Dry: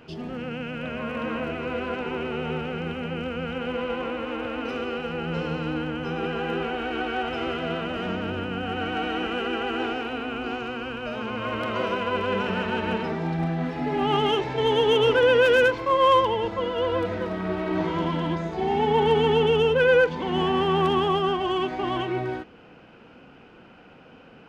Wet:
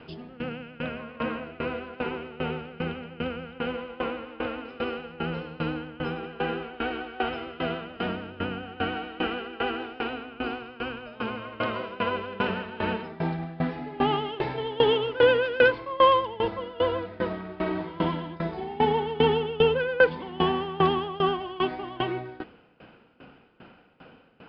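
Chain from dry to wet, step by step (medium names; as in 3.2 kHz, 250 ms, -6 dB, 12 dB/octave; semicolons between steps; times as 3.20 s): Chebyshev low-pass 5 kHz, order 6; sawtooth tremolo in dB decaying 2.5 Hz, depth 20 dB; trim +4 dB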